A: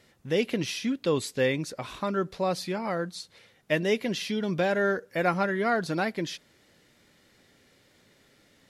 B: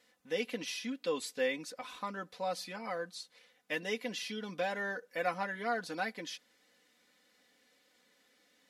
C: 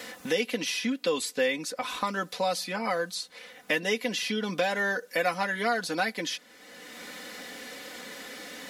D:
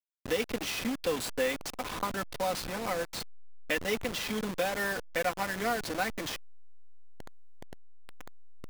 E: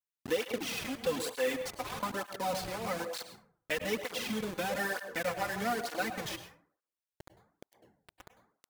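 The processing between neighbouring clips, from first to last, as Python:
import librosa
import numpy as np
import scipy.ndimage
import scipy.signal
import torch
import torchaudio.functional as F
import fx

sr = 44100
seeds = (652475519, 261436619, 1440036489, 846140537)

y1 = fx.highpass(x, sr, hz=540.0, slope=6)
y1 = y1 + 0.79 * np.pad(y1, (int(4.0 * sr / 1000.0), 0))[:len(y1)]
y1 = F.gain(torch.from_numpy(y1), -8.0).numpy()
y2 = fx.high_shelf(y1, sr, hz=4800.0, db=5.0)
y2 = fx.band_squash(y2, sr, depth_pct=70)
y2 = F.gain(torch.from_numpy(y2), 8.0).numpy()
y3 = fx.delta_hold(y2, sr, step_db=-28.0)
y3 = F.gain(torch.from_numpy(y3), -3.0).numpy()
y4 = fx.rev_plate(y3, sr, seeds[0], rt60_s=0.54, hf_ratio=0.45, predelay_ms=90, drr_db=8.5)
y4 = fx.flanger_cancel(y4, sr, hz=1.1, depth_ms=4.7)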